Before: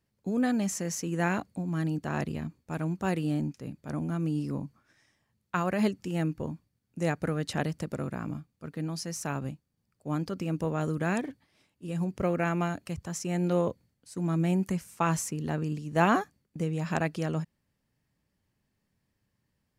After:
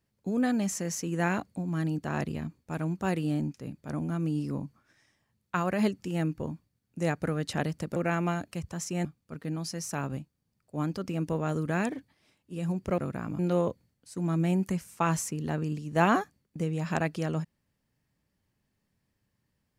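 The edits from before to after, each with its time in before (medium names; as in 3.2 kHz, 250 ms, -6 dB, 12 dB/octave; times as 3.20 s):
7.96–8.37 s: swap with 12.30–13.39 s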